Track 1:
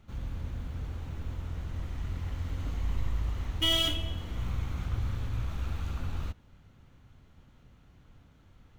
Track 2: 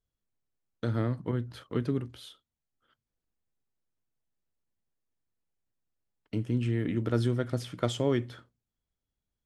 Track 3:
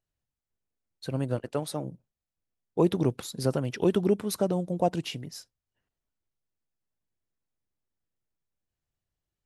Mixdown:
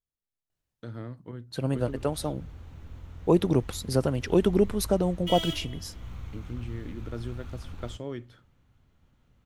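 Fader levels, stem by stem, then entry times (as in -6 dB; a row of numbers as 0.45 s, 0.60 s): -7.0 dB, -9.5 dB, +2.0 dB; 1.65 s, 0.00 s, 0.50 s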